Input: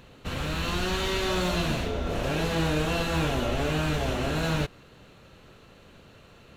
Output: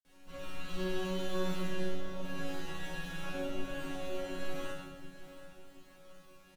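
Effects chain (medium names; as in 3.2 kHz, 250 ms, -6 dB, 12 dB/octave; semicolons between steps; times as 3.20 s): treble shelf 11 kHz +11 dB; simulated room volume 390 m³, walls mixed, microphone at 3.1 m; added noise pink -42 dBFS; granulator, pitch spread up and down by 0 st; chord resonator F#3 fifth, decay 0.71 s; on a send: feedback delay 727 ms, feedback 47%, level -14 dB; on the sum: trim -1.5 dB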